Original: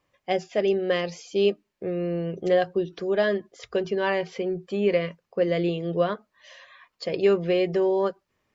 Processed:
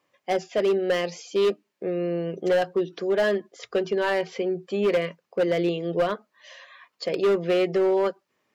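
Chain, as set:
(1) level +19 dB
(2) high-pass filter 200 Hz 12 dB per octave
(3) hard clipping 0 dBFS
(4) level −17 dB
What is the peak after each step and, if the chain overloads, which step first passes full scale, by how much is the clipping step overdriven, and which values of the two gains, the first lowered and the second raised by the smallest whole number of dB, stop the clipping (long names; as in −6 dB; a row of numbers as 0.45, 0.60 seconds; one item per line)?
+9.5, +9.0, 0.0, −17.0 dBFS
step 1, 9.0 dB
step 1 +10 dB, step 4 −8 dB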